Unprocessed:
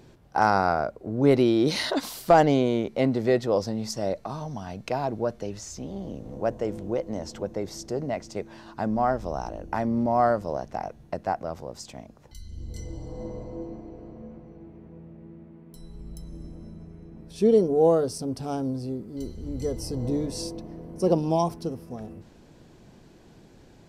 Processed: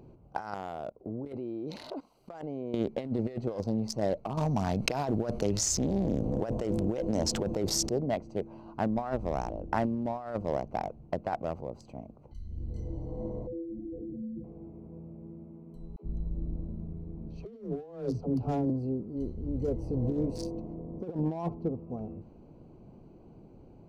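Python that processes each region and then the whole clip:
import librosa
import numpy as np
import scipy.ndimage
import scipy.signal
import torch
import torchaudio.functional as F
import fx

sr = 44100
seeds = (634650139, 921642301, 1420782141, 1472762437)

y = fx.chain(x, sr, fx.low_shelf(hz=150.0, db=-5.5),
    fx.level_steps(step_db=18), at=(0.54, 2.74))
y = fx.chain(y, sr, fx.high_shelf(hz=3100.0, db=8.5),
    fx.env_flatten(amount_pct=50), at=(4.37, 7.89))
y = fx.chain(y, sr, fx.spec_expand(power=3.1),
    fx.band_squash(depth_pct=100), at=(13.47, 14.44))
y = fx.chain(y, sr, fx.lowpass(hz=6100.0, slope=24),
    fx.low_shelf(hz=120.0, db=8.0),
    fx.dispersion(late='lows', ms=87.0, hz=320.0), at=(15.96, 18.7))
y = fx.chain(y, sr, fx.block_float(bits=7),
    fx.high_shelf(hz=3900.0, db=-6.5), at=(19.33, 20.02))
y = fx.chain(y, sr, fx.bessel_lowpass(hz=1900.0, order=2),
    fx.notch(hz=1500.0, q=9.6), at=(20.74, 21.9))
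y = fx.wiener(y, sr, points=25)
y = fx.over_compress(y, sr, threshold_db=-27.0, ratio=-0.5)
y = y * 10.0 ** (-2.5 / 20.0)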